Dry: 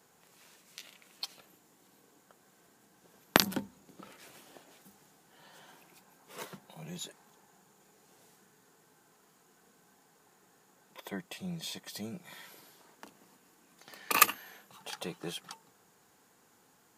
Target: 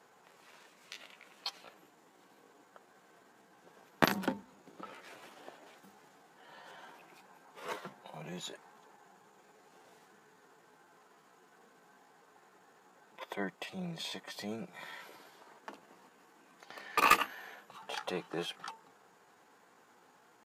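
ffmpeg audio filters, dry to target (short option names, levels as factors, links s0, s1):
-filter_complex "[0:a]asplit=2[s0][s1];[s1]highpass=f=720:p=1,volume=7.94,asoftclip=type=tanh:threshold=0.75[s2];[s0][s2]amix=inputs=2:normalize=0,lowpass=f=1300:p=1,volume=0.501,atempo=0.83,volume=0.668"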